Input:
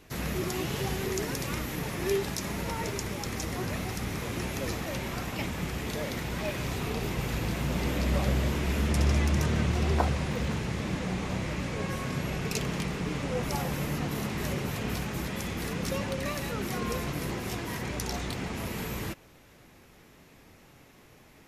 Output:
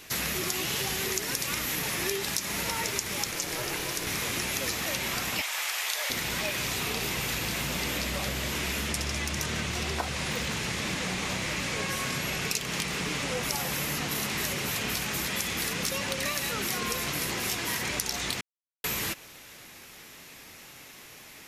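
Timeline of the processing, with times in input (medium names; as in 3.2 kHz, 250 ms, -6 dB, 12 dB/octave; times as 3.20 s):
3.31–4.07 s: ring modulator 240 Hz
5.41–6.10 s: high-pass 660 Hz 24 dB/octave
18.41–18.84 s: mute
whole clip: tilt shelf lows -7 dB, about 1.4 kHz; compression 5:1, threshold -35 dBFS; bass shelf 110 Hz -6 dB; trim +8 dB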